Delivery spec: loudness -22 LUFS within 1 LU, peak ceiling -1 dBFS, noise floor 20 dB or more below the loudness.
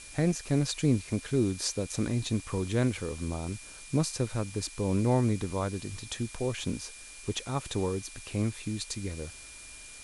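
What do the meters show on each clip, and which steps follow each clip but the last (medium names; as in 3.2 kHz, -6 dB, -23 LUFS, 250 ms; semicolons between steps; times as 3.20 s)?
steady tone 2.4 kHz; tone level -51 dBFS; noise floor -47 dBFS; noise floor target -52 dBFS; loudness -31.5 LUFS; peak level -14.0 dBFS; loudness target -22.0 LUFS
-> band-stop 2.4 kHz, Q 30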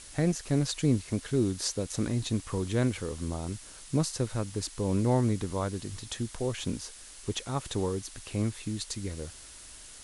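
steady tone not found; noise floor -49 dBFS; noise floor target -52 dBFS
-> noise reduction 6 dB, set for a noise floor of -49 dBFS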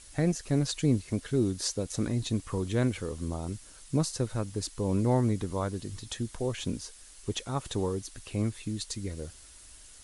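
noise floor -52 dBFS; loudness -31.5 LUFS; peak level -14.0 dBFS; loudness target -22.0 LUFS
-> trim +9.5 dB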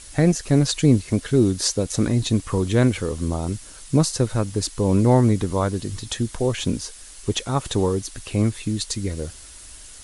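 loudness -22.0 LUFS; peak level -4.5 dBFS; noise floor -42 dBFS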